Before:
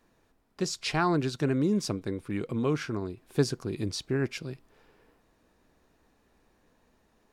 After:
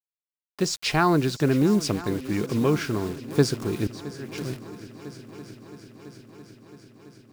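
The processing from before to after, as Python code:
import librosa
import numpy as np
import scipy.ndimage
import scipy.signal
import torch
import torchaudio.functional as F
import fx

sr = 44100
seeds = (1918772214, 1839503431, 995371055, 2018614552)

y = fx.quant_dither(x, sr, seeds[0], bits=8, dither='none')
y = fx.auto_swell(y, sr, attack_ms=641.0, at=(3.87, 4.38))
y = fx.echo_heads(y, sr, ms=334, heads='second and third', feedback_pct=66, wet_db=-17.5)
y = y * 10.0 ** (5.5 / 20.0)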